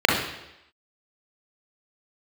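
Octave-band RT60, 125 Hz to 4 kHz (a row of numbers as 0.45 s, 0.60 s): 0.75 s, 0.85 s, 0.90 s, 0.85 s, 0.90 s, 0.90 s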